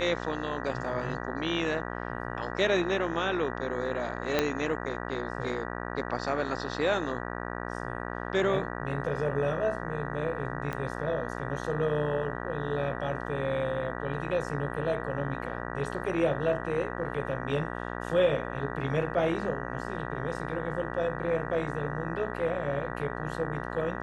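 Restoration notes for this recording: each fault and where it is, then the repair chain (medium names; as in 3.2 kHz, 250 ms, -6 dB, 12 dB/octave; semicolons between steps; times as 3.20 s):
buzz 60 Hz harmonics 32 -36 dBFS
4.39 s: pop -10 dBFS
10.73 s: pop -20 dBFS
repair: de-click; de-hum 60 Hz, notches 32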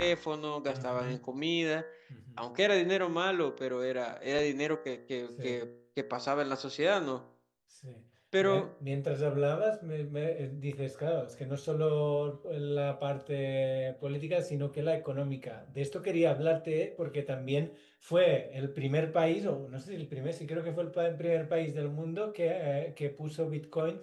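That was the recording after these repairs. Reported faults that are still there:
4.39 s: pop
10.73 s: pop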